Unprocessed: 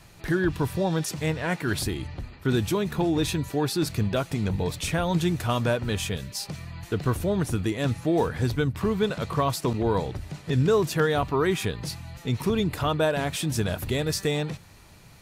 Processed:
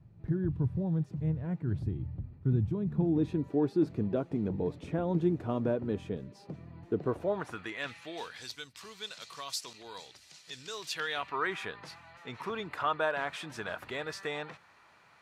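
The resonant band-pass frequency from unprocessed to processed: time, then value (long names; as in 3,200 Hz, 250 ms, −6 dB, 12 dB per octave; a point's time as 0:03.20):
resonant band-pass, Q 1.3
0:02.76 120 Hz
0:03.41 320 Hz
0:06.93 320 Hz
0:07.48 1,200 Hz
0:08.55 5,400 Hz
0:10.69 5,400 Hz
0:11.55 1,300 Hz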